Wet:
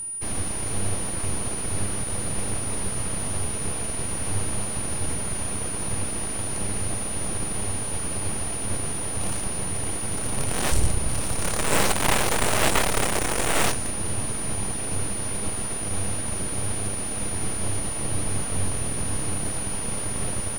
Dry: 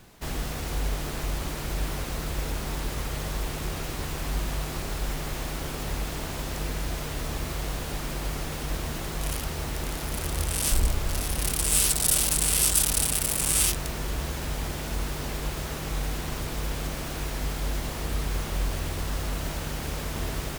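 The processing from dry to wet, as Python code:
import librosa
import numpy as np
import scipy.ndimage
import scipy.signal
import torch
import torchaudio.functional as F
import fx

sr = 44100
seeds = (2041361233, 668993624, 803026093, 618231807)

p1 = fx.dynamic_eq(x, sr, hz=6900.0, q=1.3, threshold_db=-36.0, ratio=4.0, max_db=5)
p2 = fx.sample_hold(p1, sr, seeds[0], rate_hz=1900.0, jitter_pct=0)
p3 = p1 + (p2 * librosa.db_to_amplitude(-5.5))
p4 = np.abs(p3)
p5 = p4 + 10.0 ** (-26.0 / 20.0) * np.sin(2.0 * np.pi * 9600.0 * np.arange(len(p4)) / sr)
y = fx.high_shelf(p5, sr, hz=12000.0, db=-10.5)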